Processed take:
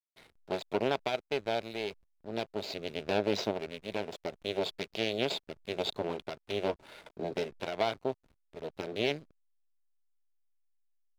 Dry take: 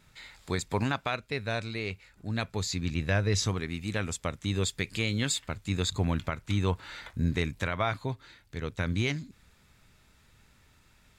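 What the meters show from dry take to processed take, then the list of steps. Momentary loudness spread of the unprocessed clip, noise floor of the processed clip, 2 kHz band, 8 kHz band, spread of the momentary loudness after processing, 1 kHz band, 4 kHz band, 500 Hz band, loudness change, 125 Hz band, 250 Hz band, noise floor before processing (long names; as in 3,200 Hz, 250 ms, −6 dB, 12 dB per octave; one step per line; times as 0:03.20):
9 LU, −77 dBFS, −6.0 dB, −15.5 dB, 9 LU, −1.5 dB, −2.0 dB, +3.0 dB, −3.5 dB, −16.5 dB, −5.5 dB, −63 dBFS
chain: harmonic generator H 4 −8 dB, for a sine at −15.5 dBFS
loudspeaker in its box 280–4,700 Hz, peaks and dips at 280 Hz −3 dB, 410 Hz +6 dB, 640 Hz +8 dB, 1,200 Hz −9 dB, 1,800 Hz −8 dB
slack as between gear wheels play −42 dBFS
level −2.5 dB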